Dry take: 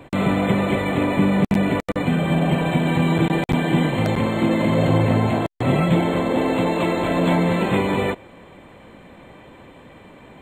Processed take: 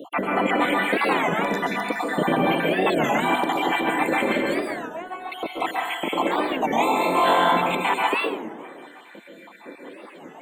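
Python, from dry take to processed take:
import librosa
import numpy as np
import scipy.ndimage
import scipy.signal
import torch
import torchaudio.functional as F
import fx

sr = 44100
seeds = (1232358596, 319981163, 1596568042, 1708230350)

y = fx.spec_dropout(x, sr, seeds[0], share_pct=67)
y = scipy.signal.sosfilt(scipy.signal.butter(4, 250.0, 'highpass', fs=sr, output='sos'), y)
y = fx.peak_eq(y, sr, hz=4500.0, db=-5.0, octaves=2.5)
y = fx.over_compress(y, sr, threshold_db=-28.0, ratio=-0.5)
y = fx.comb_fb(y, sr, f0_hz=370.0, decay_s=0.16, harmonics='all', damping=0.0, mix_pct=100, at=(4.61, 5.32))
y = fx.room_flutter(y, sr, wall_m=3.8, rt60_s=0.61, at=(6.77, 7.48), fade=0.02)
y = fx.rev_plate(y, sr, seeds[1], rt60_s=1.1, hf_ratio=0.6, predelay_ms=115, drr_db=-1.5)
y = fx.record_warp(y, sr, rpm=33.33, depth_cents=250.0)
y = y * librosa.db_to_amplitude(5.0)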